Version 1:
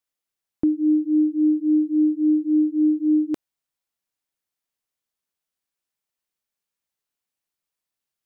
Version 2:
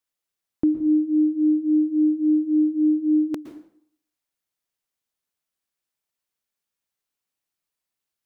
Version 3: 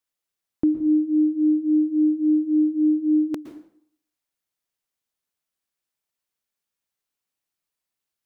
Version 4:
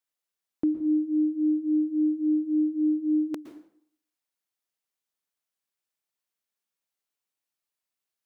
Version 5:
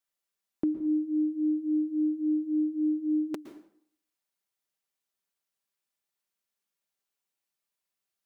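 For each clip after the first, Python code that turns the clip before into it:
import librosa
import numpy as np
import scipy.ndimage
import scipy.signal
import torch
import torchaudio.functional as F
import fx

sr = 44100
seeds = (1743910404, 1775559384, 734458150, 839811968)

y1 = fx.rev_plate(x, sr, seeds[0], rt60_s=0.61, hf_ratio=0.85, predelay_ms=105, drr_db=9.0)
y2 = y1
y3 = fx.low_shelf(y2, sr, hz=160.0, db=-9.0)
y3 = y3 * librosa.db_to_amplitude(-3.0)
y4 = y3 + 0.33 * np.pad(y3, (int(5.1 * sr / 1000.0), 0))[:len(y3)]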